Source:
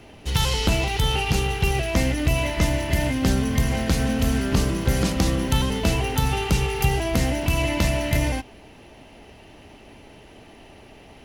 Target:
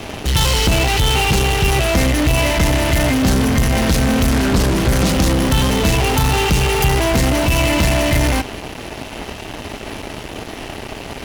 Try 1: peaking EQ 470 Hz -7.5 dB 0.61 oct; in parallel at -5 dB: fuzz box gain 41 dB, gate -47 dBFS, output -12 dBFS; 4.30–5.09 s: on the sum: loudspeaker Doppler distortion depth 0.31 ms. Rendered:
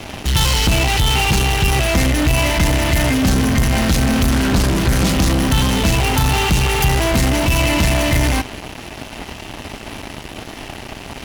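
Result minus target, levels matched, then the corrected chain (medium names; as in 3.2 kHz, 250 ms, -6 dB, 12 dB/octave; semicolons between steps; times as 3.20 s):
500 Hz band -2.5 dB
in parallel at -5 dB: fuzz box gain 41 dB, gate -47 dBFS, output -12 dBFS; 4.30–5.09 s: on the sum: loudspeaker Doppler distortion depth 0.31 ms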